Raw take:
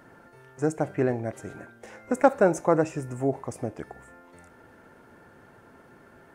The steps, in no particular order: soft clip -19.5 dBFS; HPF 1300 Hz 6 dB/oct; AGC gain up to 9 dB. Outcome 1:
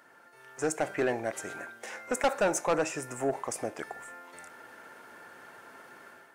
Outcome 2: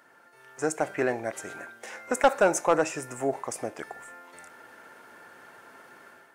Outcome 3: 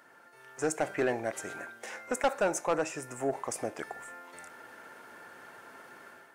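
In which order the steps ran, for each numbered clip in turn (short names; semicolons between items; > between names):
HPF > AGC > soft clip; HPF > soft clip > AGC; AGC > HPF > soft clip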